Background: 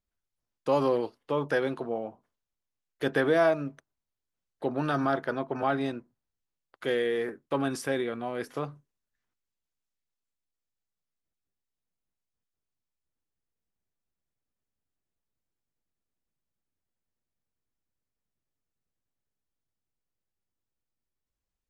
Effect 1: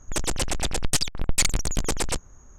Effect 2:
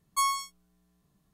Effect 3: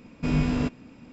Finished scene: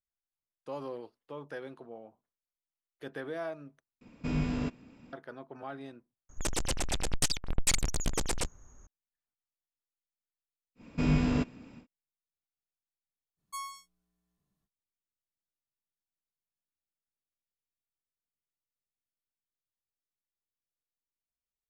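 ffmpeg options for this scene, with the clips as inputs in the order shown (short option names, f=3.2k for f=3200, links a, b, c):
-filter_complex "[3:a]asplit=2[a][b];[0:a]volume=-14.5dB,asplit=3[c][d][e];[c]atrim=end=4.014[f];[a]atrim=end=1.12,asetpts=PTS-STARTPTS,volume=-7dB[g];[d]atrim=start=5.126:end=6.294[h];[1:a]atrim=end=2.58,asetpts=PTS-STARTPTS,volume=-6dB[i];[e]atrim=start=8.866[j];[b]atrim=end=1.12,asetpts=PTS-STARTPTS,volume=-2.5dB,afade=t=in:d=0.1,afade=t=out:st=1.02:d=0.1,adelay=10750[k];[2:a]atrim=end=1.33,asetpts=PTS-STARTPTS,volume=-13.5dB,afade=t=in:d=0.05,afade=t=out:st=1.28:d=0.05,adelay=13360[l];[f][g]acrossfade=d=0.004:c1=hsin:c2=hsin[m];[m][h]acrossfade=d=0.004:c1=hsin:c2=hsin[n];[n][i]acrossfade=d=0.004:c1=hsin:c2=hsin[o];[o][j]acrossfade=d=0.004:c1=hsin:c2=hsin[p];[p][k][l]amix=inputs=3:normalize=0"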